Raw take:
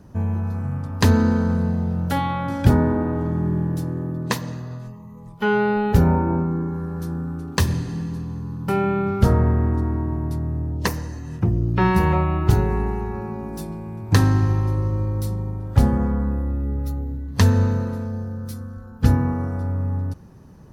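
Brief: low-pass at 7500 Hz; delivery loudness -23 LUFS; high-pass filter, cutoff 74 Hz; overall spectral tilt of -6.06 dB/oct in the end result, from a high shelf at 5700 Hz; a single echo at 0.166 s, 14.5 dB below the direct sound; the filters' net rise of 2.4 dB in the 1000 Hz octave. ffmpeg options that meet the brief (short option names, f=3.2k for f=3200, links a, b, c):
-af "highpass=74,lowpass=7.5k,equalizer=f=1k:t=o:g=3,highshelf=f=5.7k:g=-5,aecho=1:1:166:0.188,volume=-0.5dB"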